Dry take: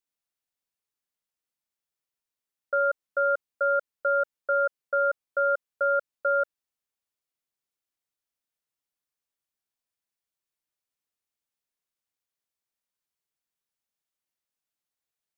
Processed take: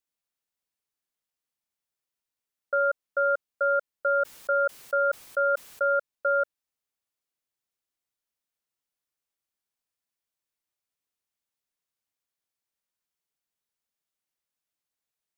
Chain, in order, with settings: 4.17–5.93 sustainer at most 64 dB/s

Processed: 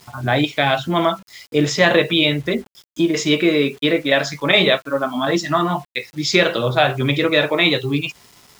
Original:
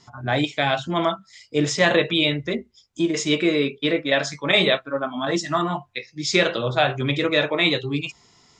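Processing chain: LPF 6100 Hz 12 dB/oct; in parallel at -2.5 dB: compressor 10:1, threshold -28 dBFS, peak gain reduction 15.5 dB; on the sum: bit-crush 8-bit; gain +2.5 dB

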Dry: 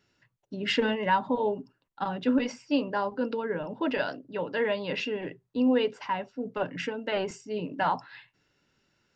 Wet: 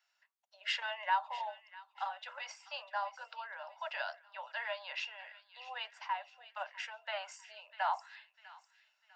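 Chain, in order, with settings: steep high-pass 640 Hz 72 dB/oct; on a send: thin delay 0.649 s, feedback 38%, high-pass 1500 Hz, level -14.5 dB; on the sum: gain -6 dB

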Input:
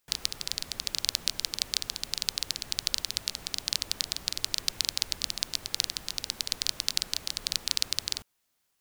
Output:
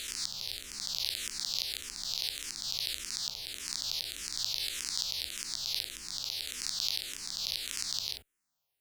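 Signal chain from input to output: spectral swells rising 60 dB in 1.67 s; endless phaser -1.7 Hz; gain -7.5 dB

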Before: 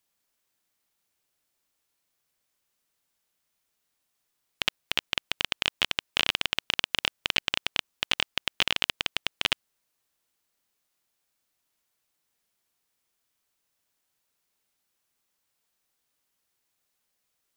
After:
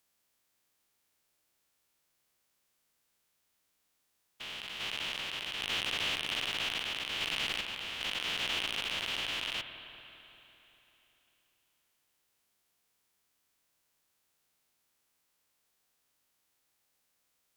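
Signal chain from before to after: stepped spectrum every 0.4 s; tube stage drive 25 dB, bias 0.4; spring tank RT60 3.4 s, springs 49/56 ms, chirp 75 ms, DRR 7.5 dB; gain +4 dB

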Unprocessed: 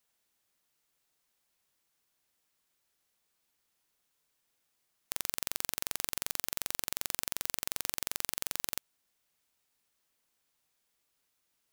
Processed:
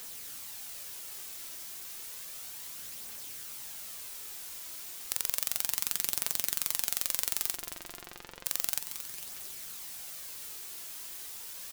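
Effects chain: in parallel at -9 dB: requantised 6-bit, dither triangular; 7.54–8.46 on the sum: tape spacing loss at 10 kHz 34 dB; on a send: feedback echo 0.226 s, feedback 56%, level -10.5 dB; on the sum: phaser 0.32 Hz, delay 3.2 ms, feedback 30%; high shelf 3400 Hz +7.5 dB; gain -5.5 dB

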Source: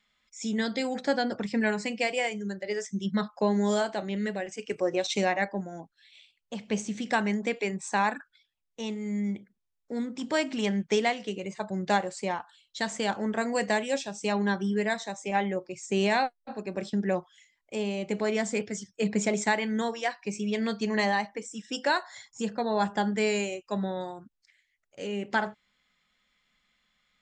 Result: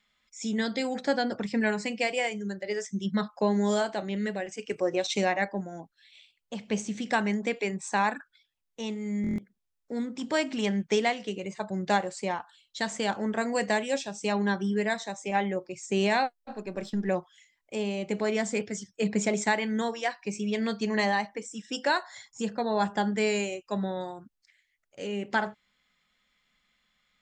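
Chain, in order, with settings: 16.36–17.09 half-wave gain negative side -3 dB; stuck buffer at 9.22, samples 1024, times 6

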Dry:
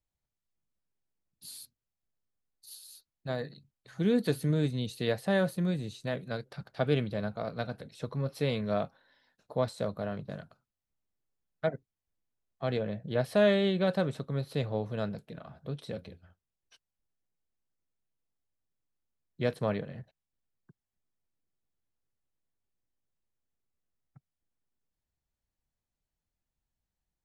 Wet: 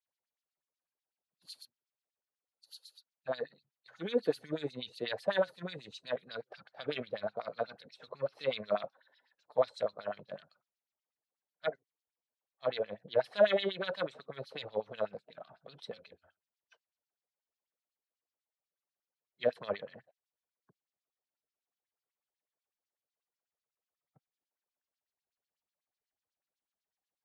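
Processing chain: bin magnitudes rounded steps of 15 dB; LFO band-pass sine 8.1 Hz 500–4800 Hz; gain +5.5 dB

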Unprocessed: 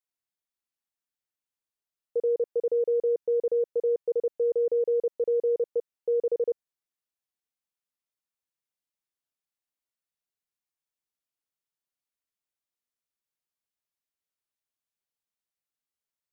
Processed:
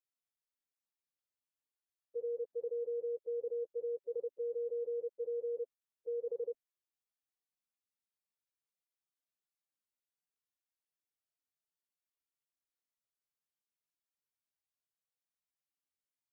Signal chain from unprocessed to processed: median-filter separation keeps harmonic; level quantiser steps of 21 dB; gain +5.5 dB

